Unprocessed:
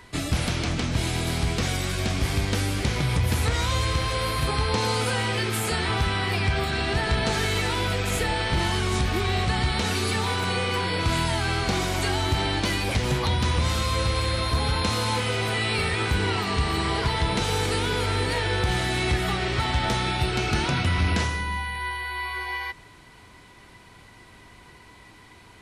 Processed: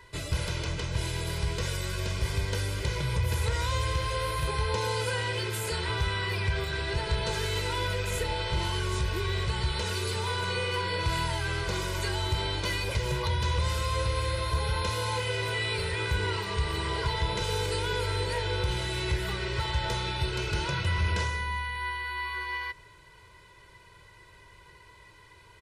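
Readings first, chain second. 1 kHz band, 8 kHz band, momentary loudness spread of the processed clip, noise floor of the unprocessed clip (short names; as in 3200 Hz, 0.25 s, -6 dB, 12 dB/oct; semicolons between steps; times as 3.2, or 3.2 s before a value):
-5.5 dB, -6.0 dB, 3 LU, -50 dBFS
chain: comb 2 ms, depth 97%; gain -8.5 dB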